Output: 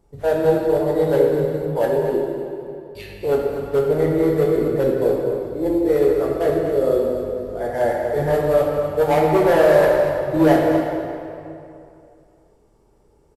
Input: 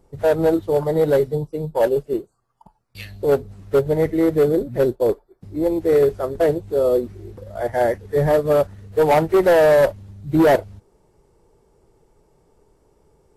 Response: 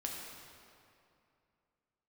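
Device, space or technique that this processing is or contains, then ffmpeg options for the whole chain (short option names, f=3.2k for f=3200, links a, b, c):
cave: -filter_complex "[0:a]aecho=1:1:243:0.299[a];[1:a]atrim=start_sample=2205[b];[a][b]afir=irnorm=-1:irlink=0,volume=-1dB"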